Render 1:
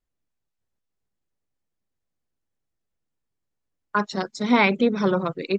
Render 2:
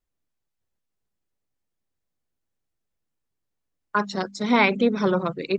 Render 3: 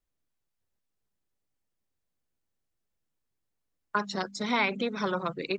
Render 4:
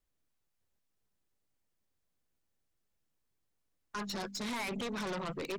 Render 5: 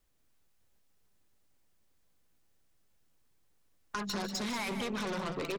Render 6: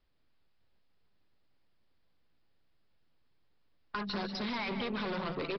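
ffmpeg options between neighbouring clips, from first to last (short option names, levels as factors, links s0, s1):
-af "bandreject=f=49.56:t=h:w=4,bandreject=f=99.12:t=h:w=4,bandreject=f=148.68:t=h:w=4,bandreject=f=198.24:t=h:w=4,bandreject=f=247.8:t=h:w=4"
-filter_complex "[0:a]acrossover=split=760|2600[s0][s1][s2];[s0]acompressor=threshold=0.0316:ratio=4[s3];[s1]acompressor=threshold=0.0501:ratio=4[s4];[s2]acompressor=threshold=0.0282:ratio=4[s5];[s3][s4][s5]amix=inputs=3:normalize=0,volume=0.841"
-af "alimiter=limit=0.0708:level=0:latency=1:release=25,aeval=exprs='0.0708*(cos(1*acos(clip(val(0)/0.0708,-1,1)))-cos(1*PI/2))+0.0282*(cos(5*acos(clip(val(0)/0.0708,-1,1)))-cos(5*PI/2))+0.00562*(cos(8*acos(clip(val(0)/0.0708,-1,1)))-cos(8*PI/2))':c=same,volume=0.376"
-filter_complex "[0:a]acompressor=threshold=0.00794:ratio=6,asplit=2[s0][s1];[s1]aecho=0:1:150|189:0.224|0.335[s2];[s0][s2]amix=inputs=2:normalize=0,volume=2.51"
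-af "aresample=11025,aresample=44100"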